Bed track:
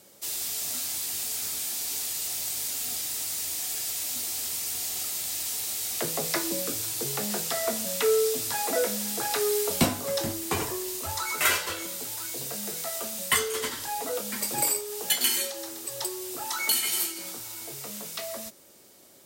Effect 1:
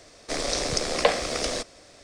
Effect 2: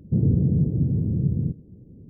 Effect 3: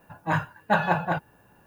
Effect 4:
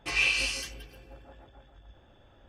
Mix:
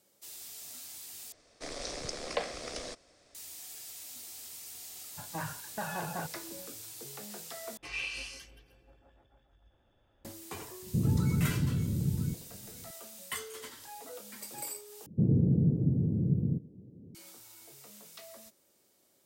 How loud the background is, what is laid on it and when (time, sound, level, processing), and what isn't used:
bed track −14.5 dB
0:01.32: overwrite with 1 −12.5 dB
0:05.08: mix in 3 −3 dB, fades 0.10 s + downward compressor 4 to 1, threshold −32 dBFS
0:07.77: overwrite with 4 −11.5 dB
0:10.82: mix in 2 −8 dB
0:15.06: overwrite with 2 −3.5 dB + high-pass filter 120 Hz

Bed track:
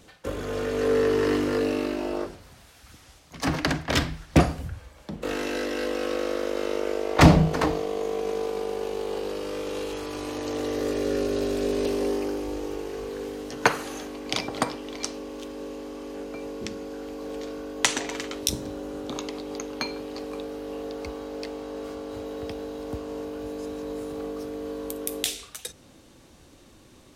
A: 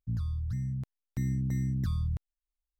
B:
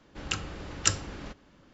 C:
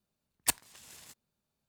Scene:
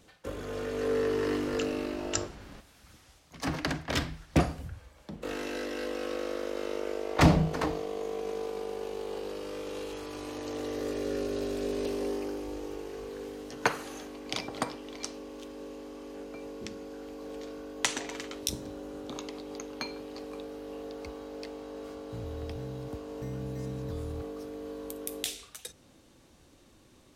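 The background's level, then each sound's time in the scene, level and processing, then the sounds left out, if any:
bed track −6.5 dB
0:01.28: mix in B −7.5 dB
0:22.05: mix in A −8.5 dB
not used: C

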